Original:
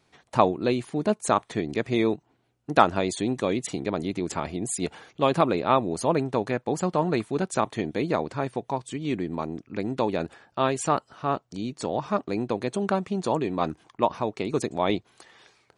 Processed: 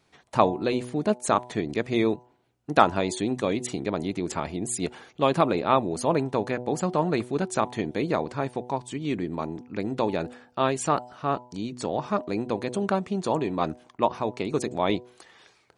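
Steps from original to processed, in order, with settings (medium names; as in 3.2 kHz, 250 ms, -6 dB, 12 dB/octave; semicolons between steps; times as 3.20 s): de-hum 123.3 Hz, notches 8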